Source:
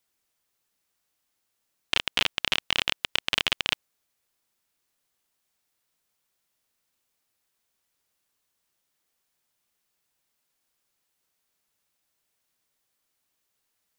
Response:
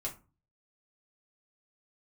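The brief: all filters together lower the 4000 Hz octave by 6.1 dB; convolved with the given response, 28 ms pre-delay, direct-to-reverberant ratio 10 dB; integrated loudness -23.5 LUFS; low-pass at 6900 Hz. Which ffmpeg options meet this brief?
-filter_complex "[0:a]lowpass=6.9k,equalizer=f=4k:t=o:g=-9,asplit=2[a][b];[1:a]atrim=start_sample=2205,adelay=28[c];[b][c]afir=irnorm=-1:irlink=0,volume=-11dB[d];[a][d]amix=inputs=2:normalize=0,volume=7dB"

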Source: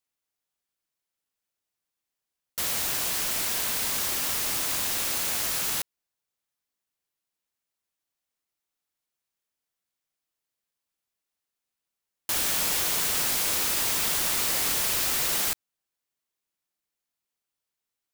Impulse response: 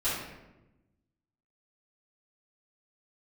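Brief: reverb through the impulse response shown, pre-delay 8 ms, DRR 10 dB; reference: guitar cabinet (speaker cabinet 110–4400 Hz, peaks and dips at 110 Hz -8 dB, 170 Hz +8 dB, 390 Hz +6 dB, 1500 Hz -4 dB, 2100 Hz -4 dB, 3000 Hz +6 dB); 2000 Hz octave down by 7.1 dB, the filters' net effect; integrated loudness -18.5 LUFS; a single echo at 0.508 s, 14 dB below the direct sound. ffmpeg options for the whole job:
-filter_complex "[0:a]equalizer=f=2k:t=o:g=-8,aecho=1:1:508:0.2,asplit=2[a][b];[1:a]atrim=start_sample=2205,adelay=8[c];[b][c]afir=irnorm=-1:irlink=0,volume=-19dB[d];[a][d]amix=inputs=2:normalize=0,highpass=110,equalizer=f=110:t=q:w=4:g=-8,equalizer=f=170:t=q:w=4:g=8,equalizer=f=390:t=q:w=4:g=6,equalizer=f=1.5k:t=q:w=4:g=-4,equalizer=f=2.1k:t=q:w=4:g=-4,equalizer=f=3k:t=q:w=4:g=6,lowpass=f=4.4k:w=0.5412,lowpass=f=4.4k:w=1.3066,volume=14.5dB"

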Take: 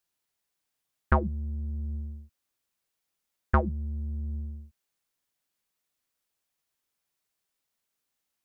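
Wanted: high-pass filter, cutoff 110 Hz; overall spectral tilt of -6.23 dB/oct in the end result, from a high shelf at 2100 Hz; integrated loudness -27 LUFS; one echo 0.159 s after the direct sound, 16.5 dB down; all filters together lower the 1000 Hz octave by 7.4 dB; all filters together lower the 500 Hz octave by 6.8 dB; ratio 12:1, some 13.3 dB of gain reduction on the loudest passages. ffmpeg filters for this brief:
-af "highpass=110,equalizer=f=500:t=o:g=-7,equalizer=f=1k:t=o:g=-8.5,highshelf=f=2.1k:g=3,acompressor=threshold=-36dB:ratio=12,aecho=1:1:159:0.15,volume=17.5dB"

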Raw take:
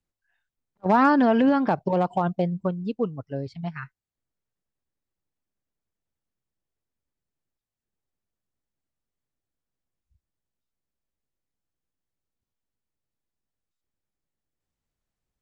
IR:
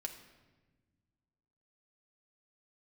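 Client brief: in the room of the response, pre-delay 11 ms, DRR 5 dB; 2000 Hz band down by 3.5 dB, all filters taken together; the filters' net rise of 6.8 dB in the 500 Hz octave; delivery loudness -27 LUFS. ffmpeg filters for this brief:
-filter_complex "[0:a]equalizer=f=500:t=o:g=8.5,equalizer=f=2k:t=o:g=-6,asplit=2[a][b];[1:a]atrim=start_sample=2205,adelay=11[c];[b][c]afir=irnorm=-1:irlink=0,volume=-3.5dB[d];[a][d]amix=inputs=2:normalize=0,volume=-8.5dB"

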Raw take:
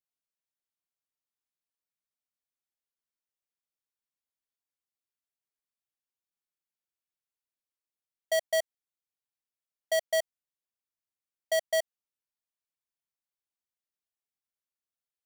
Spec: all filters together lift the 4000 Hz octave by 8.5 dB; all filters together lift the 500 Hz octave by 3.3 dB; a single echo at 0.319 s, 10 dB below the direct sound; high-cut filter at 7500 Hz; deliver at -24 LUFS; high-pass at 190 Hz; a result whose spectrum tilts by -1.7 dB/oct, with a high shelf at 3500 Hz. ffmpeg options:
-af "highpass=190,lowpass=7.5k,equalizer=f=500:t=o:g=4.5,highshelf=f=3.5k:g=8.5,equalizer=f=4k:t=o:g=5.5,aecho=1:1:319:0.316,volume=3.5dB"

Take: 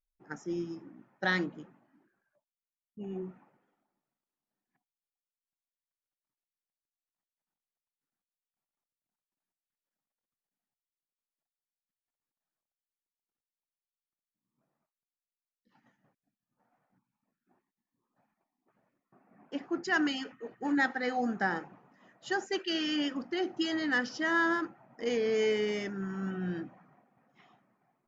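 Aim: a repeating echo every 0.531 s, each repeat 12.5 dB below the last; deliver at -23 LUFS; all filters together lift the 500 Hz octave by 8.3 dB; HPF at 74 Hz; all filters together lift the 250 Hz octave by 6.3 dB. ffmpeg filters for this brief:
-af "highpass=74,equalizer=f=250:t=o:g=5,equalizer=f=500:t=o:g=8.5,aecho=1:1:531|1062|1593:0.237|0.0569|0.0137,volume=4dB"

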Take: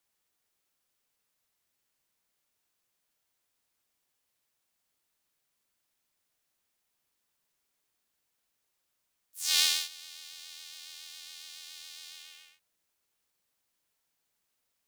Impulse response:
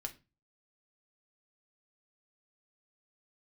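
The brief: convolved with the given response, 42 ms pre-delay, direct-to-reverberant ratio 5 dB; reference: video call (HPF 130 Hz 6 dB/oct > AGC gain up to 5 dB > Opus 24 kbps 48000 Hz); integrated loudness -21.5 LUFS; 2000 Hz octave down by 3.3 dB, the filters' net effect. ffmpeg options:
-filter_complex "[0:a]equalizer=f=2k:t=o:g=-4.5,asplit=2[a][b];[1:a]atrim=start_sample=2205,adelay=42[c];[b][c]afir=irnorm=-1:irlink=0,volume=-3dB[d];[a][d]amix=inputs=2:normalize=0,highpass=f=130:p=1,dynaudnorm=m=5dB,volume=6.5dB" -ar 48000 -c:a libopus -b:a 24k

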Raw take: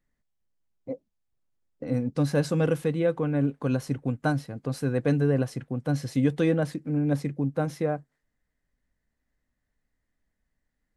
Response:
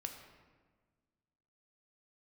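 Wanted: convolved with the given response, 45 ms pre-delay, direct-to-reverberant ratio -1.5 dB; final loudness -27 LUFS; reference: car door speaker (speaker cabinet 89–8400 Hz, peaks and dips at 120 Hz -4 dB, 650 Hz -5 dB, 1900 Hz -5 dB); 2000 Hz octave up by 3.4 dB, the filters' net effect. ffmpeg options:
-filter_complex "[0:a]equalizer=f=2k:t=o:g=7.5,asplit=2[a][b];[1:a]atrim=start_sample=2205,adelay=45[c];[b][c]afir=irnorm=-1:irlink=0,volume=3.5dB[d];[a][d]amix=inputs=2:normalize=0,highpass=89,equalizer=f=120:t=q:w=4:g=-4,equalizer=f=650:t=q:w=4:g=-5,equalizer=f=1.9k:t=q:w=4:g=-5,lowpass=f=8.4k:w=0.5412,lowpass=f=8.4k:w=1.3066,volume=-3dB"

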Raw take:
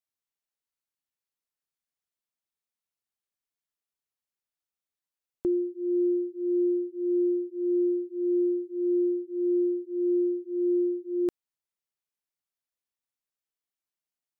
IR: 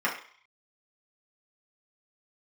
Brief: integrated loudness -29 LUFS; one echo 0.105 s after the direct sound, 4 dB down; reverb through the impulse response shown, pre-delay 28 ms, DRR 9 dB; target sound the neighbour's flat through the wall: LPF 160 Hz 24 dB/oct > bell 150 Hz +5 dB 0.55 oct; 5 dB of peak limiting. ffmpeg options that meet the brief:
-filter_complex "[0:a]alimiter=level_in=1.5dB:limit=-24dB:level=0:latency=1,volume=-1.5dB,aecho=1:1:105:0.631,asplit=2[a][b];[1:a]atrim=start_sample=2205,adelay=28[c];[b][c]afir=irnorm=-1:irlink=0,volume=-21.5dB[d];[a][d]amix=inputs=2:normalize=0,lowpass=f=160:w=0.5412,lowpass=f=160:w=1.3066,equalizer=f=150:t=o:w=0.55:g=5,volume=27dB"

